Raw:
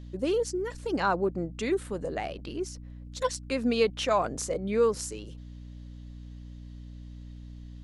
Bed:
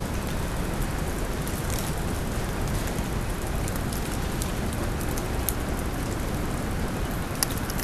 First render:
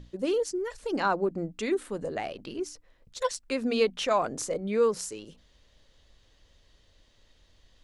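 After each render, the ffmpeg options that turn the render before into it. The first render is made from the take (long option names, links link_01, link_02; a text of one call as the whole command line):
ffmpeg -i in.wav -af "bandreject=frequency=60:width_type=h:width=6,bandreject=frequency=120:width_type=h:width=6,bandreject=frequency=180:width_type=h:width=6,bandreject=frequency=240:width_type=h:width=6,bandreject=frequency=300:width_type=h:width=6" out.wav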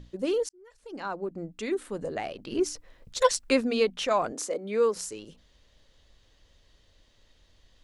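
ffmpeg -i in.wav -filter_complex "[0:a]asplit=3[link_01][link_02][link_03];[link_01]afade=type=out:start_time=2.51:duration=0.02[link_04];[link_02]acontrast=90,afade=type=in:start_time=2.51:duration=0.02,afade=type=out:start_time=3.6:duration=0.02[link_05];[link_03]afade=type=in:start_time=3.6:duration=0.02[link_06];[link_04][link_05][link_06]amix=inputs=3:normalize=0,asettb=1/sr,asplit=3[link_07][link_08][link_09];[link_07]atrim=end=4.324[link_10];[link_08]atrim=start=4.32:end=4.96,asetpts=PTS-STARTPTS,afade=type=in:duration=0.004:curve=qsin,afade=type=out:start_time=0.636:duration=0.004:curve=qsin,highpass=frequency=230:width=0.5412,highpass=frequency=230:width=1.3066[link_11];[link_09]atrim=start=4.956[link_12];[link_10][link_11]acrossfade=duration=0.004:curve1=hsin:curve2=qsin[link_13];[link_13][link_12]acrossfade=duration=0.004:curve1=qsin:curve2=hsin,asplit=2[link_14][link_15];[link_14]atrim=end=0.49,asetpts=PTS-STARTPTS,afade=type=out:start_time=0.486:duration=0.004:curve=hsin[link_16];[link_15]atrim=start=0.49,asetpts=PTS-STARTPTS,afade=type=in:duration=1.52[link_17];[link_16][link_17]concat=n=2:v=0:a=1" out.wav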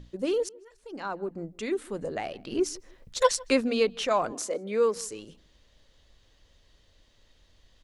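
ffmpeg -i in.wav -filter_complex "[0:a]asplit=2[link_01][link_02];[link_02]adelay=158,lowpass=frequency=2500:poles=1,volume=-23.5dB,asplit=2[link_03][link_04];[link_04]adelay=158,lowpass=frequency=2500:poles=1,volume=0.27[link_05];[link_01][link_03][link_05]amix=inputs=3:normalize=0" out.wav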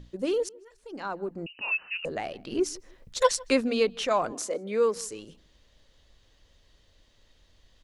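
ffmpeg -i in.wav -filter_complex "[0:a]asettb=1/sr,asplit=3[link_01][link_02][link_03];[link_01]atrim=end=1.464[link_04];[link_02]atrim=start=1.46:end=2.05,asetpts=PTS-STARTPTS,afade=type=in:duration=0.004:curve=qsin,afade=type=out:start_time=0.586:duration=0.004:curve=qsin,lowpass=frequency=2600:width_type=q:width=0.5098,lowpass=frequency=2600:width_type=q:width=0.6013,lowpass=frequency=2600:width_type=q:width=0.9,lowpass=frequency=2600:width_type=q:width=2.563,afreqshift=-3000[link_05];[link_03]atrim=start=2.046[link_06];[link_04][link_05]acrossfade=duration=0.004:curve1=hsin:curve2=qsin[link_07];[link_07][link_06]acrossfade=duration=0.004:curve1=qsin:curve2=hsin" out.wav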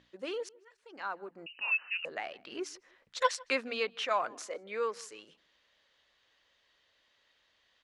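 ffmpeg -i in.wav -af "bandpass=frequency=1800:width_type=q:width=0.85:csg=0" out.wav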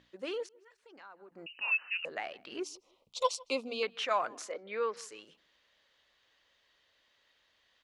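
ffmpeg -i in.wav -filter_complex "[0:a]asettb=1/sr,asplit=3[link_01][link_02][link_03];[link_01]atrim=end=0.464[link_04];[link_02]atrim=start=0.46:end=1.32,asetpts=PTS-STARTPTS,afade=type=in:duration=0.004:curve=qsin,afade=type=out:start_time=0.856:duration=0.004:curve=qsin,acompressor=threshold=-55dB:ratio=2.5:attack=3.2:release=140:knee=1:detection=peak[link_05];[link_03]atrim=start=1.316[link_06];[link_04][link_05]acrossfade=duration=0.004:curve1=hsin:curve2=qsin[link_07];[link_07][link_06]acrossfade=duration=0.004:curve1=qsin:curve2=hsin,asettb=1/sr,asplit=3[link_08][link_09][link_10];[link_08]atrim=end=2.634[link_11];[link_09]atrim=start=2.63:end=3.83,asetpts=PTS-STARTPTS,afade=type=in:duration=0.004:curve=qsin,afade=type=out:start_time=1.196:duration=0.004:curve=qsin,asuperstop=centerf=1700:order=4:qfactor=1[link_12];[link_10]atrim=start=3.826[link_13];[link_11][link_12]acrossfade=duration=0.004:curve1=hsin:curve2=qsin[link_14];[link_14][link_13]acrossfade=duration=0.004:curve1=qsin:curve2=hsin,asplit=3[link_15][link_16][link_17];[link_15]afade=type=out:start_time=4.51:duration=0.02[link_18];[link_16]lowpass=frequency=4700:width=0.5412,lowpass=frequency=4700:width=1.3066,afade=type=in:start_time=4.51:duration=0.02,afade=type=out:start_time=4.96:duration=0.02[link_19];[link_17]afade=type=in:start_time=4.96:duration=0.02[link_20];[link_18][link_19][link_20]amix=inputs=3:normalize=0" out.wav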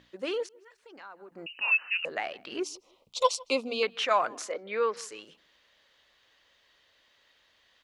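ffmpeg -i in.wav -af "volume=5.5dB" out.wav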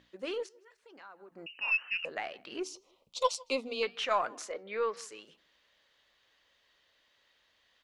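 ffmpeg -i in.wav -af "aeval=exprs='0.316*(cos(1*acos(clip(val(0)/0.316,-1,1)))-cos(1*PI/2))+0.00398*(cos(6*acos(clip(val(0)/0.316,-1,1)))-cos(6*PI/2))':channel_layout=same,flanger=delay=3.6:depth=3.3:regen=-87:speed=0.92:shape=triangular" out.wav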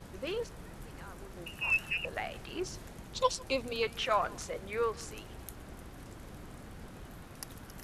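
ffmpeg -i in.wav -i bed.wav -filter_complex "[1:a]volume=-19.5dB[link_01];[0:a][link_01]amix=inputs=2:normalize=0" out.wav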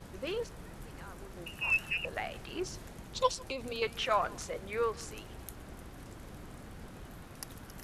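ffmpeg -i in.wav -filter_complex "[0:a]asettb=1/sr,asplit=3[link_01][link_02][link_03];[link_01]atrim=end=3.284[link_04];[link_02]atrim=start=3.28:end=3.82,asetpts=PTS-STARTPTS,afade=type=in:duration=0.004:curve=qsin,afade=type=out:start_time=0.536:duration=0.004:curve=qsin,acompressor=threshold=-33dB:ratio=6:attack=3.2:release=140:knee=1:detection=peak[link_05];[link_03]atrim=start=3.816[link_06];[link_04][link_05]acrossfade=duration=0.004:curve1=hsin:curve2=qsin[link_07];[link_07][link_06]acrossfade=duration=0.004:curve1=qsin:curve2=hsin" out.wav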